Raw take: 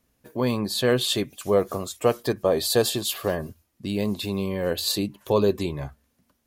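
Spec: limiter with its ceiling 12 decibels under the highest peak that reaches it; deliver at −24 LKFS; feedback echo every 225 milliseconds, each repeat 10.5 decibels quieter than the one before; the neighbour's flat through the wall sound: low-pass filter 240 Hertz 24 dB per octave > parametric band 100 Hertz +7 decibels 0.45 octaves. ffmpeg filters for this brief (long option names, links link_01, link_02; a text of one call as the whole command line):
ffmpeg -i in.wav -af "alimiter=limit=-19dB:level=0:latency=1,lowpass=frequency=240:width=0.5412,lowpass=frequency=240:width=1.3066,equalizer=frequency=100:width_type=o:width=0.45:gain=7,aecho=1:1:225|450|675:0.299|0.0896|0.0269,volume=10.5dB" out.wav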